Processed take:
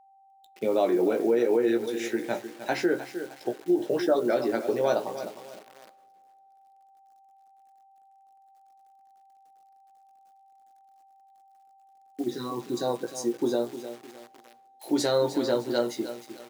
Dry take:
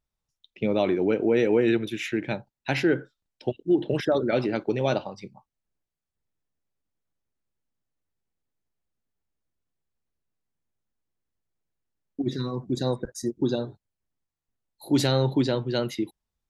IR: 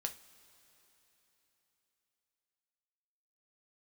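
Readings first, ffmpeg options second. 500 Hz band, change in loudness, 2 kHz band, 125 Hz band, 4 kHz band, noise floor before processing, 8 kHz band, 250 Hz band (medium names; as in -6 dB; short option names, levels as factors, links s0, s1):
+0.5 dB, -1.5 dB, -3.5 dB, -14.0 dB, -3.0 dB, under -85 dBFS, +2.0 dB, -2.5 dB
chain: -filter_complex "[0:a]lowpass=9800,equalizer=f=2700:w=1.3:g=-13,asplit=2[s0][s1];[s1]adelay=17,volume=0.562[s2];[s0][s2]amix=inputs=2:normalize=0,aecho=1:1:307|614|921:0.237|0.0806|0.0274,acrusher=bits=9:dc=4:mix=0:aa=0.000001,asplit=2[s3][s4];[1:a]atrim=start_sample=2205,asetrate=57330,aresample=44100[s5];[s4][s5]afir=irnorm=-1:irlink=0,volume=0.299[s6];[s3][s6]amix=inputs=2:normalize=0,alimiter=limit=0.251:level=0:latency=1:release=141,highpass=310,aeval=exprs='val(0)+0.00158*sin(2*PI*780*n/s)':c=same,lowshelf=f=430:g=-3.5,volume=1.19"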